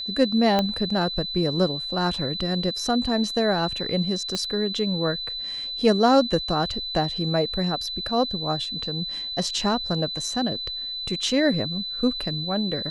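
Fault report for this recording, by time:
whistle 4,000 Hz −29 dBFS
0:00.59: click −9 dBFS
0:04.35: click −13 dBFS

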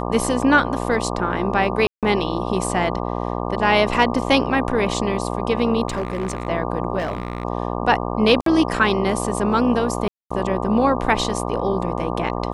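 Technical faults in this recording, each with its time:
mains buzz 60 Hz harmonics 20 −25 dBFS
0:01.87–0:02.03: drop-out 157 ms
0:05.88–0:06.47: clipping −19 dBFS
0:06.98–0:07.45: clipping −19.5 dBFS
0:08.41–0:08.46: drop-out 53 ms
0:10.08–0:10.30: drop-out 225 ms

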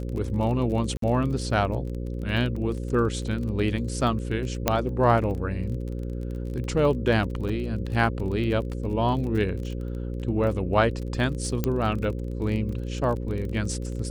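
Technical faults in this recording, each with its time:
mains buzz 60 Hz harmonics 9 −31 dBFS
surface crackle 27 per second −32 dBFS
0:00.97–0:01.02: drop-out 53 ms
0:04.68: click −5 dBFS
0:07.49–0:07.50: drop-out 5.2 ms
0:11.64: click −10 dBFS

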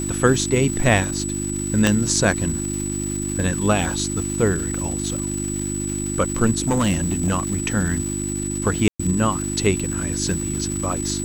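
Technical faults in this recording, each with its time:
surface crackle 550 per second −28 dBFS
mains hum 50 Hz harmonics 7 −27 dBFS
whistle 7,900 Hz −28 dBFS
0:01.87: click −3 dBFS
0:06.62–0:07.68: clipping −15 dBFS
0:08.88–0:08.99: drop-out 115 ms

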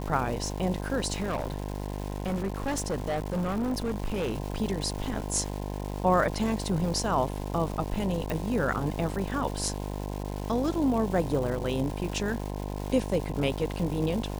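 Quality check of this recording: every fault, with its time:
mains buzz 50 Hz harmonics 21 −34 dBFS
surface crackle 550 per second −35 dBFS
0:01.16–0:04.37: clipping −25.5 dBFS
0:08.30: click

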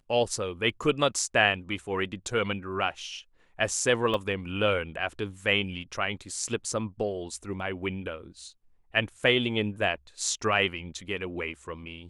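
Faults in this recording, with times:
0:04.14: drop-out 2.1 ms

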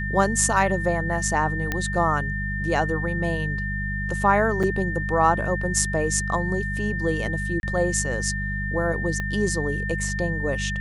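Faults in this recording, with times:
mains hum 50 Hz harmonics 4 −29 dBFS
whistle 1,800 Hz −29 dBFS
0:01.72: click −10 dBFS
0:04.63–0:04.64: drop-out 5.4 ms
0:07.60–0:07.63: drop-out 31 ms
0:09.20: click −16 dBFS

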